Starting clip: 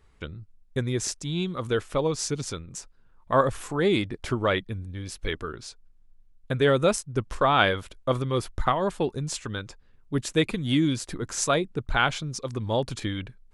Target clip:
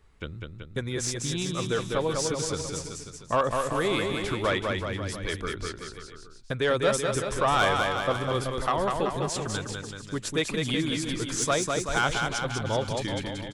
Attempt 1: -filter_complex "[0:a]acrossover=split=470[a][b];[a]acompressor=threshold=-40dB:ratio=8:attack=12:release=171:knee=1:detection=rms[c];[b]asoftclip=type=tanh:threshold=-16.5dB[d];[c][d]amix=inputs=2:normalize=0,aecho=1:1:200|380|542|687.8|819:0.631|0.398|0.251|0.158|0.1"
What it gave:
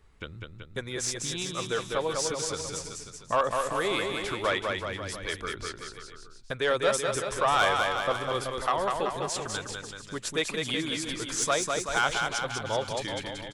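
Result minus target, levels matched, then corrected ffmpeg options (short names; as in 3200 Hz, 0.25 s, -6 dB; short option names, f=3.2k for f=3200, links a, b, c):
compressor: peak gain reduction +9 dB
-filter_complex "[0:a]acrossover=split=470[a][b];[a]acompressor=threshold=-30dB:ratio=8:attack=12:release=171:knee=1:detection=rms[c];[b]asoftclip=type=tanh:threshold=-16.5dB[d];[c][d]amix=inputs=2:normalize=0,aecho=1:1:200|380|542|687.8|819:0.631|0.398|0.251|0.158|0.1"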